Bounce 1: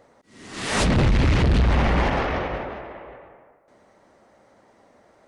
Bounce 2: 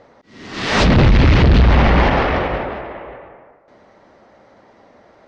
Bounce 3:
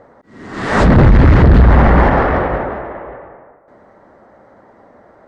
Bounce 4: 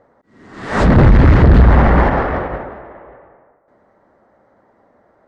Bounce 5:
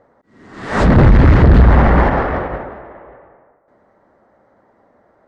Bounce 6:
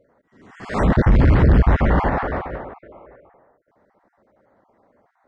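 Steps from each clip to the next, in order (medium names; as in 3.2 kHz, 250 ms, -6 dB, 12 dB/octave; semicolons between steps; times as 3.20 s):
low-pass 5.4 kHz 24 dB/octave; trim +7.5 dB
high-order bell 3.8 kHz -12.5 dB; trim +3.5 dB
upward expansion 1.5:1, over -23 dBFS
no audible change
random holes in the spectrogram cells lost 28%; trim -5 dB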